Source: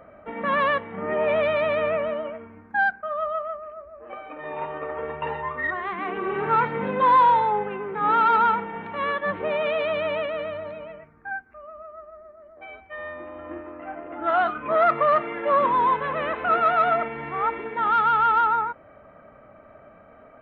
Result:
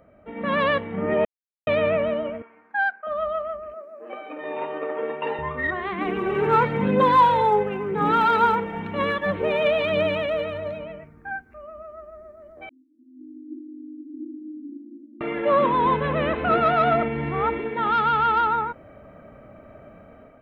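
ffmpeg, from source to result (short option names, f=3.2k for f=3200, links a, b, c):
-filter_complex "[0:a]asettb=1/sr,asplit=3[a][b][c];[a]atrim=end=2.424[d];[b]atrim=start=2.42:end=3.07,asetpts=PTS-STARTPTS,afade=t=in:d=0.004:c=qsin,afade=t=out:st=0.646:d=0.004:c=qsin,highpass=770,lowpass=2.9k[e];[c]atrim=start=3.066[f];[d][e]acrossfade=d=0.004:c1=hsin:c2=qsin[g];[g][f]acrossfade=d=0.004:c1=qsin:c2=hsin,asettb=1/sr,asplit=3[h][i][j];[h]atrim=end=3.744[k];[i]atrim=start=3.74:end=5.39,asetpts=PTS-STARTPTS,afade=t=in:d=0.004:c=qsin,afade=t=out:st=1.646:d=0.004:c=qsin,highpass=f=230:w=0.5412,highpass=f=230:w=1.3066[l];[j]atrim=start=5.386[m];[k][l]acrossfade=d=0.004:c1=hsin:c2=qsin[n];[n][m]acrossfade=d=0.004:c1=qsin:c2=hsin,asettb=1/sr,asplit=3[o][p][q];[o]atrim=end=6.014[r];[p]atrim=start=6.01:end=10.79,asetpts=PTS-STARTPTS,afade=t=in:d=0.004:c=qsin,afade=t=out:st=4.776:d=0.004:c=qsin,aphaser=in_gain=1:out_gain=1:delay=2.5:decay=0.34:speed=1:type=triangular[s];[q]atrim=start=10.786[t];[r][s]acrossfade=d=0.004:c1=hsin:c2=qsin[u];[u][t]acrossfade=d=0.004:c1=qsin:c2=hsin,asettb=1/sr,asplit=3[v][w][x];[v]atrim=end=12.694[y];[w]atrim=start=12.69:end=15.21,asetpts=PTS-STARTPTS,afade=t=in:d=0.004:c=qsin,afade=t=out:st=2.516:d=0.004:c=qsin,asuperpass=centerf=280:order=8:qfactor=3.8[z];[x]atrim=start=15.206[aa];[y][z]acrossfade=d=0.004:c1=hsin:c2=qsin[ab];[ab][aa]acrossfade=d=0.004:c1=qsin:c2=hsin,asettb=1/sr,asplit=3[ac][ad][ae];[ac]atrim=end=15.854[af];[ad]atrim=start=15.85:end=17.58,asetpts=PTS-STARTPTS,afade=t=in:d=0.004:c=qsin,afade=t=out:st=1.726:d=0.004:c=qsin,lowshelf=f=240:g=7[ag];[ae]atrim=start=17.576[ah];[af][ag]acrossfade=d=0.004:c1=hsin:c2=qsin[ai];[ai][ah]acrossfade=d=0.004:c1=qsin:c2=hsin,asplit=3[aj][ak][al];[aj]atrim=end=1.25,asetpts=PTS-STARTPTS,afade=t=out:st=1.246:d=0.004:c=hsin[am];[ak]atrim=start=1.25:end=1.67,asetpts=PTS-STARTPTS,volume=0[an];[al]atrim=start=1.67,asetpts=PTS-STARTPTS,afade=t=in:d=0.004:c=hsin[ao];[am][an][ao]concat=n=3:v=0:a=1,equalizer=f=1.2k:w=0.55:g=-10,dynaudnorm=f=170:g=5:m=10dB,volume=-1.5dB"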